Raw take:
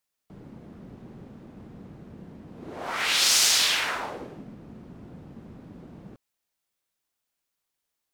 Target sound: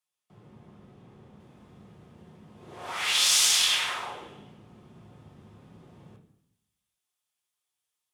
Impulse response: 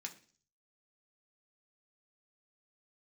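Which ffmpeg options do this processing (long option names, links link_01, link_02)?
-filter_complex "[0:a]asetnsamples=nb_out_samples=441:pad=0,asendcmd='1.4 highshelf g 10',highshelf=frequency=3800:gain=5[link_01];[1:a]atrim=start_sample=2205,asetrate=22050,aresample=44100[link_02];[link_01][link_02]afir=irnorm=-1:irlink=0,volume=-7dB"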